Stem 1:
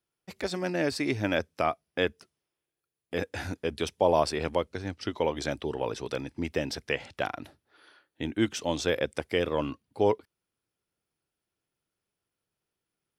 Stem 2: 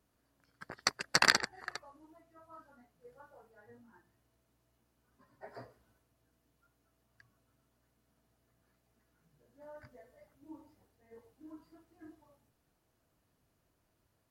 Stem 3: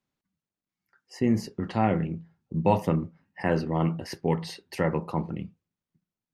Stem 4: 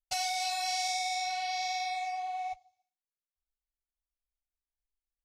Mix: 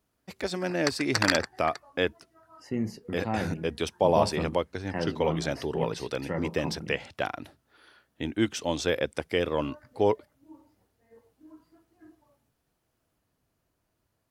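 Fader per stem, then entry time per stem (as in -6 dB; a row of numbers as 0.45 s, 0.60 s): +0.5 dB, 0.0 dB, -6.5 dB, mute; 0.00 s, 0.00 s, 1.50 s, mute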